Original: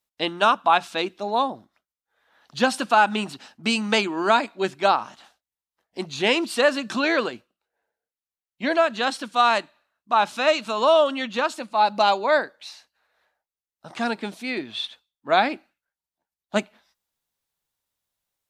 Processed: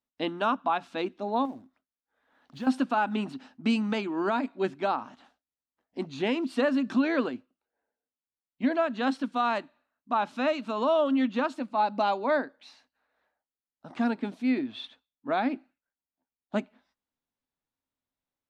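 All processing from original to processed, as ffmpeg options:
-filter_complex "[0:a]asettb=1/sr,asplit=3[a][b][c];[a]atrim=end=1.454[d];[b]atrim=start=1.45:end=2.67,asetpts=PTS-STARTPTS,afade=t=in:d=0.004:c=qsin,afade=t=out:st=1.216:d=0.004:c=qsin,acrusher=bits=3:mode=log:mix=0:aa=0.000001,acompressor=threshold=-33dB:ratio=4:attack=3.2:release=140:knee=1:detection=peak[e];[c]atrim=start=2.666[f];[d][e]acrossfade=d=0.004:c1=hsin:c2=qsin[g];[g][f]acrossfade=d=0.004:c1=qsin:c2=hsin,lowpass=f=1.8k:p=1,equalizer=f=260:t=o:w=0.34:g=13.5,alimiter=limit=-11.5dB:level=0:latency=1:release=285,volume=-4.5dB"

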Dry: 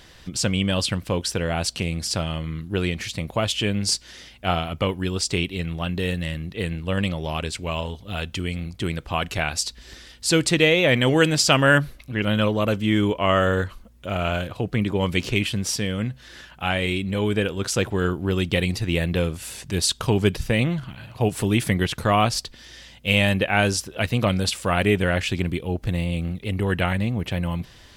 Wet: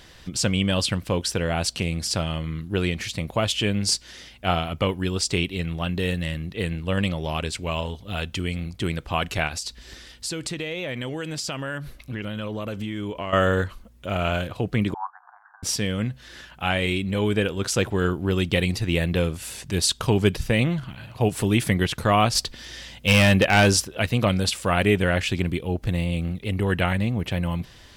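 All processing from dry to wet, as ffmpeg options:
-filter_complex "[0:a]asettb=1/sr,asplit=3[a][b][c];[a]atrim=end=9.474[d];[b]atrim=start=9.47:end=13.33,asetpts=PTS-STARTPTS,afade=t=in:d=0.004:c=qsin,afade=t=out:st=3.856:d=0.004:c=qsin,acompressor=threshold=-26dB:ratio=12:attack=3.2:release=140:knee=1:detection=peak,volume=15dB,asoftclip=hard,volume=-15dB[e];[c]atrim=start=13.326[f];[d][e]acrossfade=d=0.004:c1=hsin:c2=qsin[g];[g][f]acrossfade=d=0.004:c1=qsin:c2=hsin,asettb=1/sr,asplit=3[h][i][j];[h]atrim=end=14.944[k];[i]atrim=start=14.94:end=15.63,asetpts=PTS-STARTPTS,afade=t=in:d=0.004:c=qsin,afade=t=out:st=0.686:d=0.004:c=qsin,asuperpass=centerf=1100:order=20:qfactor=1.2,tiltshelf=f=1.1k:g=7[l];[j]atrim=start=15.626[m];[k][l]acrossfade=d=0.004:c1=hsin:c2=qsin[n];[n][m]acrossfade=d=0.004:c1=qsin:c2=hsin,asettb=1/sr,asplit=3[o][p][q];[o]atrim=end=22.354[r];[p]atrim=start=22.35:end=23.85,asetpts=PTS-STARTPTS,afade=t=in:d=0.004:c=qsin,afade=t=out:st=1.496:d=0.004:c=qsin,acontrast=20,asoftclip=type=hard:threshold=-11.5dB[s];[q]atrim=start=23.846[t];[r][s]acrossfade=d=0.004:c1=hsin:c2=qsin[u];[u][t]acrossfade=d=0.004:c1=qsin:c2=hsin"

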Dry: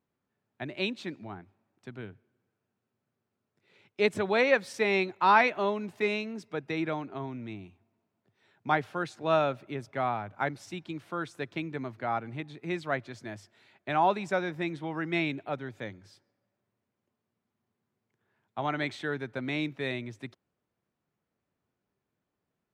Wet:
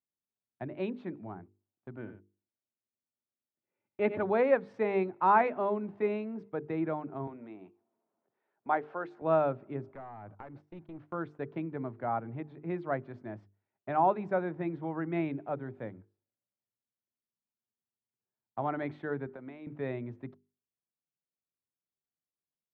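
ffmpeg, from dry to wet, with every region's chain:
-filter_complex "[0:a]asettb=1/sr,asplit=3[a][b][c];[a]atrim=end=1.964[d];[b]atrim=start=1.96:end=4.23,asetpts=PTS-STARTPTS,afade=t=in:d=0.004:c=qsin,afade=t=out:st=2.266:d=0.004:c=qsin,highshelf=f=4.4k:t=q:w=1.5:g=-13.5,aecho=1:1:3.4:0.47,atrim=end_sample=100107,aecho=1:1:94:0.282,atrim=end_sample=100107[e];[c]atrim=start=4.226[f];[d][e]acrossfade=d=0.004:c1=hsin:c2=qsin[g];[g][f]acrossfade=d=0.004:c1=qsin:c2=hsin,asettb=1/sr,asplit=3[h][i][j];[h]atrim=end=7.274[k];[i]atrim=start=7.27:end=9.22,asetpts=PTS-STARTPTS,afade=t=in:d=0.004:c=qsin,afade=t=out:st=1.946:d=0.004:c=qsin,highpass=360,acompressor=mode=upward:threshold=-41dB:ratio=2.5:attack=3.2:release=140:knee=2.83:detection=peak[l];[j]atrim=start=9.216[m];[k][l]acrossfade=d=0.004:c1=hsin:c2=qsin[n];[n][m]acrossfade=d=0.004:c1=qsin:c2=hsin,asettb=1/sr,asplit=3[o][p][q];[o]atrim=end=9.884[r];[p]atrim=start=9.88:end=11.01,asetpts=PTS-STARTPTS,afade=t=in:d=0.004:c=qsin,afade=t=out:st=1.126:d=0.004:c=qsin,acompressor=threshold=-38dB:ratio=6:attack=3.2:release=140:knee=1:detection=peak,aeval=exprs='clip(val(0),-1,0.00668)':c=same[s];[q]atrim=start=11.006[t];[r][s]acrossfade=d=0.004:c1=hsin:c2=qsin[u];[u][t]acrossfade=d=0.004:c1=qsin:c2=hsin,asettb=1/sr,asplit=3[v][w][x];[v]atrim=end=19.274[y];[w]atrim=start=19.27:end=19.67,asetpts=PTS-STARTPTS,afade=t=in:d=0.004:c=qsin,afade=t=out:st=0.396:d=0.004:c=qsin,highpass=f=290:p=1,acompressor=threshold=-39dB:ratio=6:attack=3.2:release=140:knee=1:detection=peak[z];[x]atrim=start=19.666[aa];[y][z]acrossfade=d=0.004:c1=hsin:c2=qsin[ab];[ab][aa]acrossfade=d=0.004:c1=qsin:c2=hsin,lowpass=1.1k,agate=range=-21dB:threshold=-50dB:ratio=16:detection=peak,bandreject=f=50:t=h:w=6,bandreject=f=100:t=h:w=6,bandreject=f=150:t=h:w=6,bandreject=f=200:t=h:w=6,bandreject=f=250:t=h:w=6,bandreject=f=300:t=h:w=6,bandreject=f=350:t=h:w=6,bandreject=f=400:t=h:w=6,bandreject=f=450:t=h:w=6"

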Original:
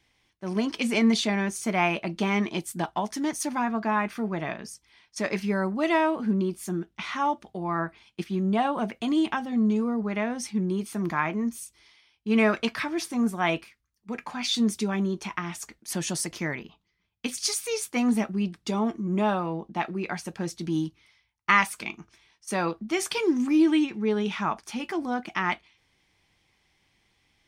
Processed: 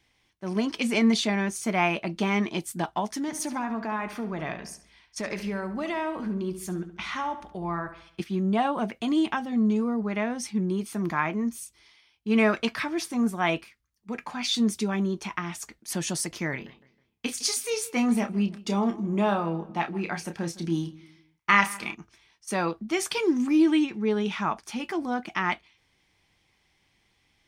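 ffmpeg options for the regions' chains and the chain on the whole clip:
-filter_complex "[0:a]asettb=1/sr,asplit=3[a][b][c];[a]atrim=end=3.214[d];[b]atrim=start=3.21:end=8.2,asetpts=PTS-STARTPTS,afade=t=in:d=0.004:c=qsin,afade=t=out:st=4.986:d=0.004:c=qsin,asubboost=boost=5:cutoff=96,acompressor=threshold=-26dB:ratio=6:attack=3.2:release=140:knee=1:detection=peak,asplit=2[e][f];[f]adelay=70,lowpass=f=4.6k:p=1,volume=-11dB,asplit=2[g][h];[h]adelay=70,lowpass=f=4.6k:p=1,volume=0.47,asplit=2[i][j];[j]adelay=70,lowpass=f=4.6k:p=1,volume=0.47,asplit=2[k][l];[l]adelay=70,lowpass=f=4.6k:p=1,volume=0.47,asplit=2[m][n];[n]adelay=70,lowpass=f=4.6k:p=1,volume=0.47[o];[e][g][i][k][m][o]amix=inputs=6:normalize=0,atrim=end_sample=220059[p];[c]atrim=start=8.196[q];[d][p]acrossfade=d=0.004:c1=hsin:c2=qsin[r];[r][q]acrossfade=d=0.004:c1=qsin:c2=hsin,asettb=1/sr,asplit=3[s][t][u];[s]atrim=end=16.504[v];[t]atrim=start=16.5:end=21.95,asetpts=PTS-STARTPTS,afade=t=in:d=0.004:c=qsin,afade=t=out:st=5.446:d=0.004:c=qsin,asplit=2[w][x];[x]adelay=30,volume=-8dB[y];[w][y]amix=inputs=2:normalize=0,atrim=end_sample=240345,asplit=2[z][aa];[aa]adelay=159,lowpass=f=2.6k:p=1,volume=-19dB,asplit=2[ab][ac];[ac]adelay=159,lowpass=f=2.6k:p=1,volume=0.38,asplit=2[ad][ae];[ae]adelay=159,lowpass=f=2.6k:p=1,volume=0.38[af];[z][ab][ad][af]amix=inputs=4:normalize=0,atrim=end_sample=240345[ag];[u]atrim=start=21.946[ah];[v][ag]acrossfade=d=0.004:c1=hsin:c2=qsin[ai];[ai][ah]acrossfade=d=0.004:c1=qsin:c2=hsin"

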